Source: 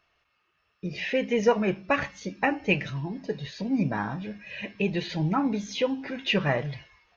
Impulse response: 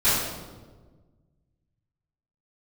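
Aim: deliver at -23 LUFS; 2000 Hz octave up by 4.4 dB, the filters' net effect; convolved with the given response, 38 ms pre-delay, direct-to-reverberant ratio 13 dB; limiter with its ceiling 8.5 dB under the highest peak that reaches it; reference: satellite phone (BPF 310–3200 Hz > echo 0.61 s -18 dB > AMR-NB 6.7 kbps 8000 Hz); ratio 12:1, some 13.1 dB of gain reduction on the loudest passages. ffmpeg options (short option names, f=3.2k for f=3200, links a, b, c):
-filter_complex "[0:a]equalizer=f=2k:t=o:g=6.5,acompressor=threshold=-29dB:ratio=12,alimiter=level_in=1.5dB:limit=-24dB:level=0:latency=1,volume=-1.5dB,asplit=2[a][b];[1:a]atrim=start_sample=2205,adelay=38[c];[b][c]afir=irnorm=-1:irlink=0,volume=-29.5dB[d];[a][d]amix=inputs=2:normalize=0,highpass=310,lowpass=3.2k,aecho=1:1:610:0.126,volume=17.5dB" -ar 8000 -c:a libopencore_amrnb -b:a 6700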